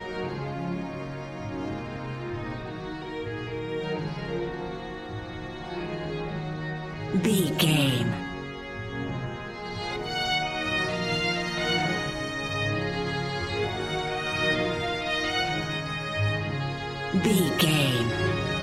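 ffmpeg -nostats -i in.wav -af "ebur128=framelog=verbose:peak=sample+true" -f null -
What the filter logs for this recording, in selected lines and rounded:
Integrated loudness:
  I:         -28.3 LUFS
  Threshold: -38.3 LUFS
Loudness range:
  LRA:         7.5 LU
  Threshold: -48.5 LUFS
  LRA low:   -33.6 LUFS
  LRA high:  -26.1 LUFS
Sample peak:
  Peak:       -9.2 dBFS
True peak:
  Peak:       -9.1 dBFS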